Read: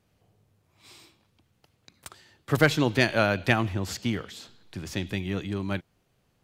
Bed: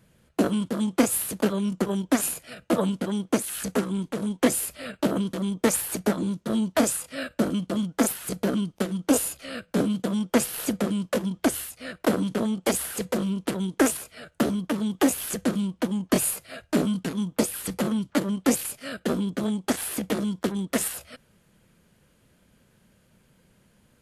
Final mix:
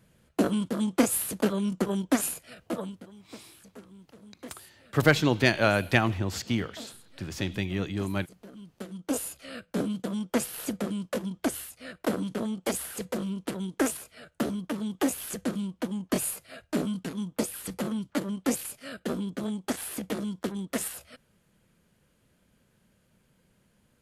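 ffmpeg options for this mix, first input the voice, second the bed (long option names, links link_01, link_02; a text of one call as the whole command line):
ffmpeg -i stem1.wav -i stem2.wav -filter_complex "[0:a]adelay=2450,volume=0dB[link_01];[1:a]volume=15.5dB,afade=type=out:start_time=2.12:duration=0.99:silence=0.0891251,afade=type=in:start_time=8.54:duration=0.88:silence=0.133352[link_02];[link_01][link_02]amix=inputs=2:normalize=0" out.wav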